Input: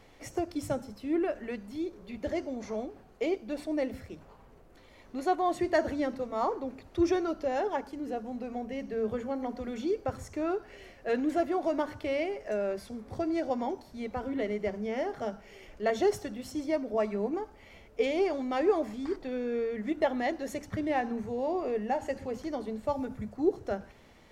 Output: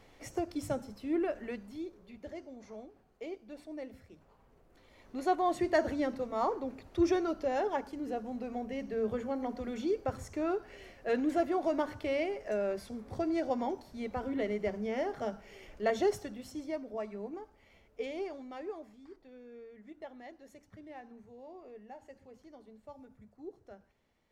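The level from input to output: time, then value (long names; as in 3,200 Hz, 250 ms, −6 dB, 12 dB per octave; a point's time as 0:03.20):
0:01.49 −2.5 dB
0:02.31 −12 dB
0:04.08 −12 dB
0:05.30 −1.5 dB
0:15.88 −1.5 dB
0:17.06 −10 dB
0:18.17 −10 dB
0:19.02 −19 dB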